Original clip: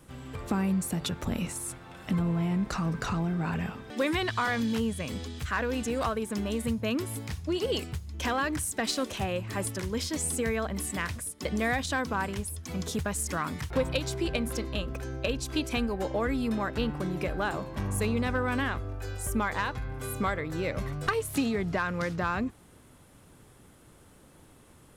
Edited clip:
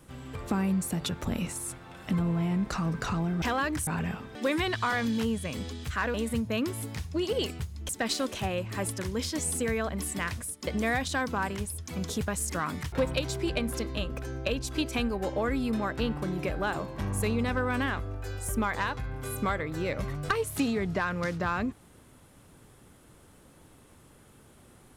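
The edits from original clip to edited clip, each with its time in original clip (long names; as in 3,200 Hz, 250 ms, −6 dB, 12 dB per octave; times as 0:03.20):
0:05.69–0:06.47: remove
0:08.22–0:08.67: move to 0:03.42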